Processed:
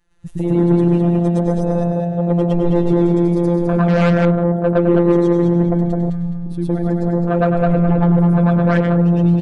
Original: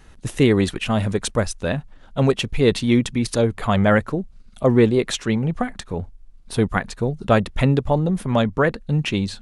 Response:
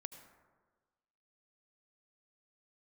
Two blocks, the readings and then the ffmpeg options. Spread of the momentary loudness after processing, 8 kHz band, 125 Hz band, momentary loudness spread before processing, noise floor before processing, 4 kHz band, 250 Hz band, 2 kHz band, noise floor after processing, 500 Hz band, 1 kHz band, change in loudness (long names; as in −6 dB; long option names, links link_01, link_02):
6 LU, below −15 dB, +6.5 dB, 11 LU, −47 dBFS, below −10 dB, +6.5 dB, −3.0 dB, −24 dBFS, +3.5 dB, +2.5 dB, +5.0 dB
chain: -filter_complex "[0:a]asplit=2[link_01][link_02];[1:a]atrim=start_sample=2205,asetrate=30429,aresample=44100,adelay=112[link_03];[link_02][link_03]afir=irnorm=-1:irlink=0,volume=8dB[link_04];[link_01][link_04]amix=inputs=2:normalize=0,afftfilt=real='hypot(re,im)*cos(PI*b)':imag='0':win_size=1024:overlap=0.75,bandreject=frequency=5400:width=29,asplit=2[link_05][link_06];[link_06]adelay=209,lowpass=frequency=4700:poles=1,volume=-3.5dB,asplit=2[link_07][link_08];[link_08]adelay=209,lowpass=frequency=4700:poles=1,volume=0.36,asplit=2[link_09][link_10];[link_10]adelay=209,lowpass=frequency=4700:poles=1,volume=0.36,asplit=2[link_11][link_12];[link_12]adelay=209,lowpass=frequency=4700:poles=1,volume=0.36,asplit=2[link_13][link_14];[link_14]adelay=209,lowpass=frequency=4700:poles=1,volume=0.36[link_15];[link_07][link_09][link_11][link_13][link_15]amix=inputs=5:normalize=0[link_16];[link_05][link_16]amix=inputs=2:normalize=0,afwtdn=0.158,acontrast=67,volume=-5.5dB"